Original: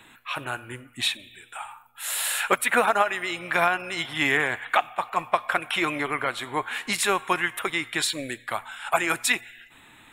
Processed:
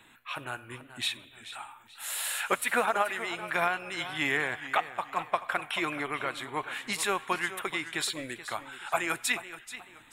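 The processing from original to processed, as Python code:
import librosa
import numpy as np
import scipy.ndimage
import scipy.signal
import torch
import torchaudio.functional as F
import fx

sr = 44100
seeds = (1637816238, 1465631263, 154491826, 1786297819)

y = fx.echo_warbled(x, sr, ms=430, feedback_pct=32, rate_hz=2.8, cents=101, wet_db=-13.5)
y = y * librosa.db_to_amplitude(-6.0)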